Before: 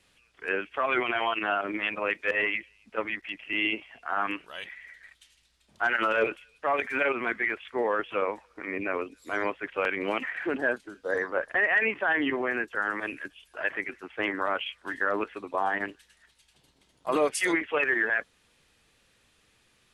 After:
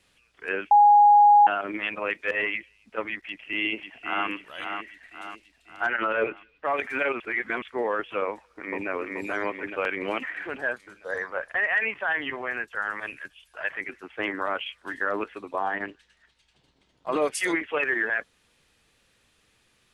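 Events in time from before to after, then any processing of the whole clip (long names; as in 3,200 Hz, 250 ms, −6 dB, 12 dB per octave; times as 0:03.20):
0:00.71–0:01.47: beep over 826 Hz −11.5 dBFS
0:03.20–0:04.27: delay throw 540 ms, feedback 50%, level −6 dB
0:05.86–0:06.65: low-pass filter 2,600 Hz
0:07.20–0:07.62: reverse
0:08.29–0:08.89: delay throw 430 ms, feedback 55%, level −1 dB
0:10.42–0:13.81: parametric band 300 Hz −10.5 dB 1.2 octaves
0:15.58–0:17.22: high-frequency loss of the air 83 metres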